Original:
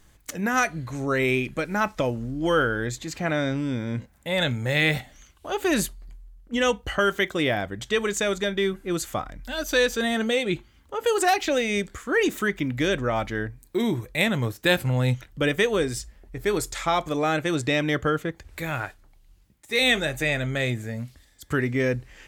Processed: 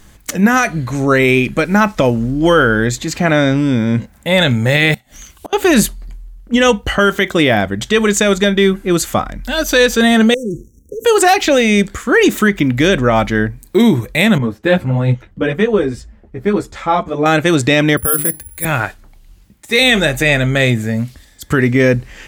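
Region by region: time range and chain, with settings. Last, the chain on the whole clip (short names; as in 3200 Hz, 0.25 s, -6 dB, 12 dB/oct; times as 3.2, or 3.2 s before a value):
4.94–5.53 high shelf 6100 Hz +10 dB + flipped gate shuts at -26 dBFS, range -28 dB
10.34–11.05 sample leveller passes 2 + compressor 4:1, threshold -34 dBFS + brick-wall FIR band-stop 540–5500 Hz
14.38–17.26 LPF 1100 Hz 6 dB/oct + ensemble effect
17.97–18.65 notches 50/100/150/200/250/300 Hz + careless resampling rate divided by 4×, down filtered, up zero stuff + three-band expander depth 100%
whole clip: bell 210 Hz +6 dB 0.29 oct; maximiser +13.5 dB; gain -1 dB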